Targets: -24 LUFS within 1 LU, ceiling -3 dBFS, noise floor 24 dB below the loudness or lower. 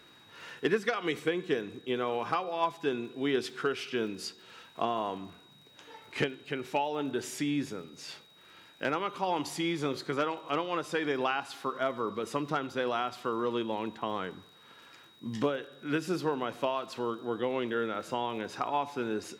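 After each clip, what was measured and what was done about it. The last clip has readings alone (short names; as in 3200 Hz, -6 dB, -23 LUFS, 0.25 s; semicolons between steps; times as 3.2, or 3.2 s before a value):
ticks 51/s; steady tone 3800 Hz; tone level -58 dBFS; loudness -33.0 LUFS; peak -17.0 dBFS; loudness target -24.0 LUFS
-> de-click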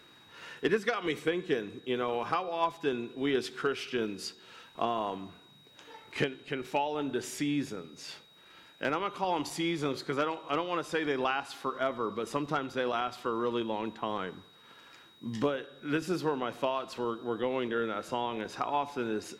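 ticks 0.36/s; steady tone 3800 Hz; tone level -58 dBFS
-> notch 3800 Hz, Q 30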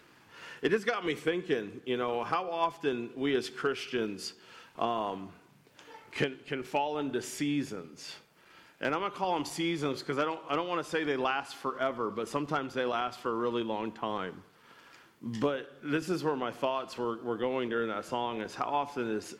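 steady tone none; loudness -33.0 LUFS; peak -14.5 dBFS; loudness target -24.0 LUFS
-> gain +9 dB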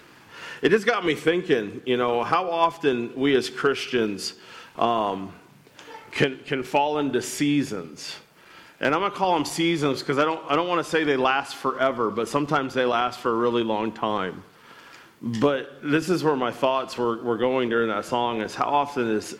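loudness -24.0 LUFS; peak -5.5 dBFS; noise floor -51 dBFS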